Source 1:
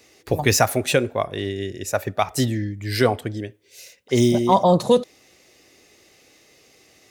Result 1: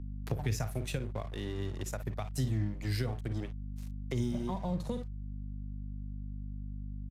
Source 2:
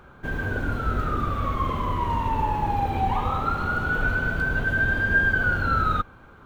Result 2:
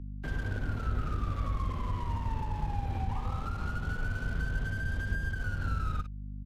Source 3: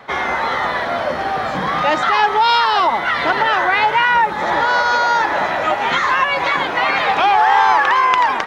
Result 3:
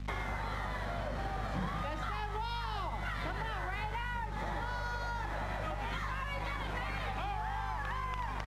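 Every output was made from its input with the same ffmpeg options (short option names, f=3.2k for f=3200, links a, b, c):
-filter_complex "[0:a]aecho=1:1:38|54:0.158|0.266,acompressor=threshold=-22dB:ratio=2,aeval=exprs='sgn(val(0))*max(abs(val(0))-0.0141,0)':c=same,aeval=exprs='val(0)+0.0141*(sin(2*PI*50*n/s)+sin(2*PI*2*50*n/s)/2+sin(2*PI*3*50*n/s)/3+sin(2*PI*4*50*n/s)/4+sin(2*PI*5*50*n/s)/5)':c=same,acrossover=split=170[a][b];[b]acompressor=threshold=-39dB:ratio=4[c];[a][c]amix=inputs=2:normalize=0,aresample=32000,aresample=44100,volume=-1.5dB"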